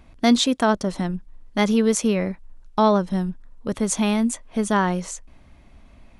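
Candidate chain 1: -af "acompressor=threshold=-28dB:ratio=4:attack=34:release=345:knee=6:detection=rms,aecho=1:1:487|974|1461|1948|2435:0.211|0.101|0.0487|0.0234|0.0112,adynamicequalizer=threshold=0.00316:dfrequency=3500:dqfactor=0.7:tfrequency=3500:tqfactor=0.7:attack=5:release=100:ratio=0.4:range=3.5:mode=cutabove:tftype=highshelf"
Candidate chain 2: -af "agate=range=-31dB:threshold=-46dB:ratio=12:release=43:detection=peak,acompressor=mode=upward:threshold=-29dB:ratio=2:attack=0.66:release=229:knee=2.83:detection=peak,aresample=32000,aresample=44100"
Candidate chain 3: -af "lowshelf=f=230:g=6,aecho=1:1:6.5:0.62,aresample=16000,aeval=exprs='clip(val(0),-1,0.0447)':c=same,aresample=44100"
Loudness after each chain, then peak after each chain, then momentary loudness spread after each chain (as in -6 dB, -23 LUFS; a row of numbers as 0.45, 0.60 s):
-32.0, -22.0, -23.5 LUFS; -14.0, -4.5, -5.0 dBFS; 12, 13, 11 LU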